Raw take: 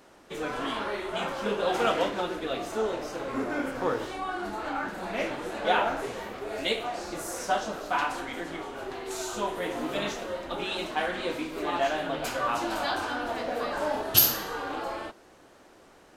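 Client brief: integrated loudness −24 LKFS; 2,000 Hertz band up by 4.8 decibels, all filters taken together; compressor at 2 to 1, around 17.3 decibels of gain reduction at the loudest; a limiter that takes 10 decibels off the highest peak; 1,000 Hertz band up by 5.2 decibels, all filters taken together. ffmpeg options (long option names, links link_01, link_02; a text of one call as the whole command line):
ffmpeg -i in.wav -af "equalizer=frequency=1000:width_type=o:gain=6,equalizer=frequency=2000:width_type=o:gain=4,acompressor=threshold=-47dB:ratio=2,volume=17dB,alimiter=limit=-13.5dB:level=0:latency=1" out.wav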